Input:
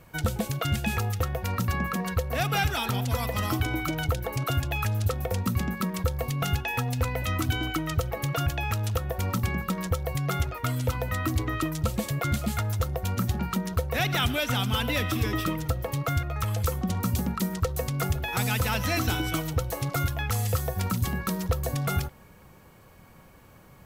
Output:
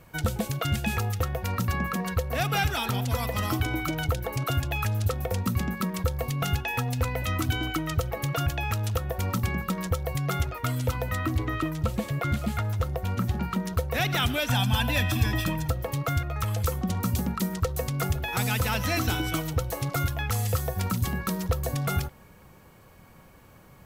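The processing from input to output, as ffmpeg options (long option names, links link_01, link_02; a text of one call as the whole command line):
ffmpeg -i in.wav -filter_complex "[0:a]asettb=1/sr,asplit=3[link_01][link_02][link_03];[link_01]atrim=end=11.194[link_04];[link_02]atrim=start=11.19:end=13.61,asetpts=PTS-STARTPTS,afade=type=in:duration=0.004:curve=qsin,afade=type=out:start_time=2.416:duration=0.004:curve=qsin,acrossover=split=3400[link_05][link_06];[link_06]acompressor=threshold=-44dB:ratio=4:attack=1:release=60[link_07];[link_05][link_07]amix=inputs=2:normalize=0[link_08];[link_03]atrim=start=13.606[link_09];[link_04][link_08]acrossfade=duration=0.004:curve1=hsin:curve2=qsin[link_10];[link_10][link_09]acrossfade=duration=0.004:curve1=qsin:curve2=hsin,asettb=1/sr,asplit=3[link_11][link_12][link_13];[link_11]atrim=end=14.484[link_14];[link_12]atrim=start=14.48:end=15.69,asetpts=PTS-STARTPTS,afade=type=in:duration=0.004:curve=qsin,afade=type=out:start_time=1.206:duration=0.004:curve=qsin,aecho=1:1:1.2:0.65,atrim=end_sample=53361[link_15];[link_13]atrim=start=15.686[link_16];[link_14][link_15]acrossfade=duration=0.004:curve1=hsin:curve2=qsin[link_17];[link_17][link_16]acrossfade=duration=0.004:curve1=qsin:curve2=hsin" out.wav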